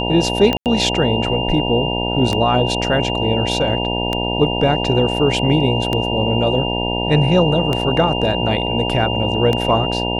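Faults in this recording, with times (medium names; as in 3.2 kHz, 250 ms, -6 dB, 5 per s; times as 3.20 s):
buzz 60 Hz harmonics 16 -22 dBFS
tick 33 1/3 rpm -6 dBFS
whine 2.8 kHz -23 dBFS
0.57–0.66 s: dropout 88 ms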